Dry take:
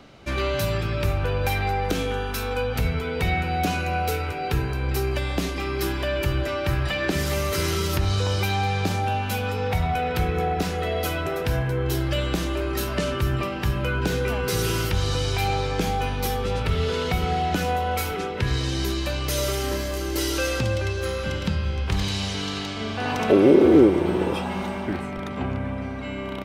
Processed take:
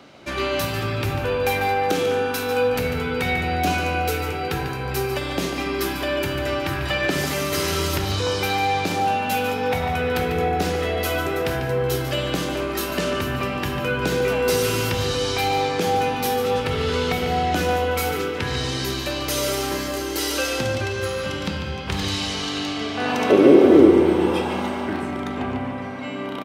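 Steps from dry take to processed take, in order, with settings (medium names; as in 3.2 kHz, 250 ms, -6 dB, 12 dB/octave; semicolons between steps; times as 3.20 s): high-pass 100 Hz 6 dB/octave; bass shelf 130 Hz -9 dB; echo from a far wall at 25 m, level -8 dB; on a send at -6 dB: reverberation RT60 1.4 s, pre-delay 3 ms; on the sum: trim +2.5 dB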